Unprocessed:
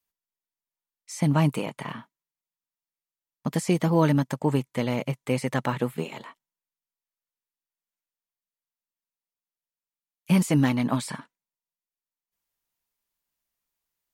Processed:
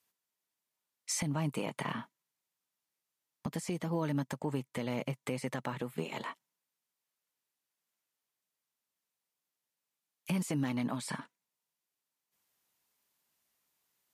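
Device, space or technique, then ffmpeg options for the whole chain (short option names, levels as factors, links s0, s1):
podcast mastering chain: -af "highpass=110,acompressor=threshold=0.0141:ratio=2,alimiter=level_in=1.78:limit=0.0631:level=0:latency=1:release=434,volume=0.562,volume=2.11" -ar 32000 -c:a libmp3lame -b:a 128k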